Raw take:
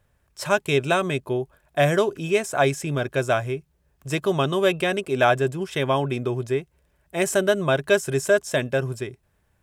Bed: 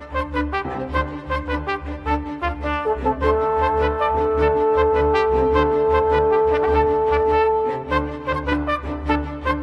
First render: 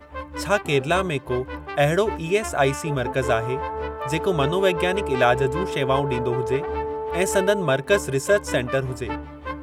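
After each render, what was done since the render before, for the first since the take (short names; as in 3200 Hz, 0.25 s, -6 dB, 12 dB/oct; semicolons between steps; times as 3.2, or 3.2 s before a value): add bed -10 dB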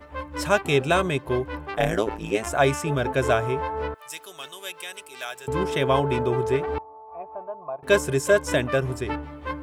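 1.74–2.47 AM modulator 110 Hz, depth 90%; 3.94–5.48 differentiator; 6.78–7.83 vocal tract filter a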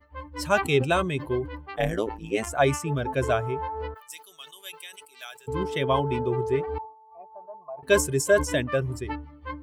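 per-bin expansion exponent 1.5; sustainer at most 130 dB/s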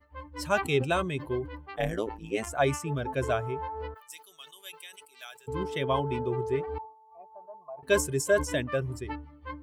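gain -4 dB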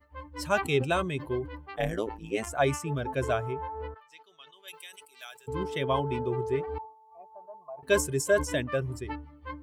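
3.53–4.68 air absorption 210 m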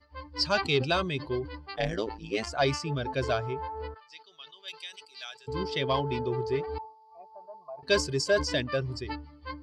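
soft clip -15 dBFS, distortion -22 dB; synth low-pass 4700 Hz, resonance Q 14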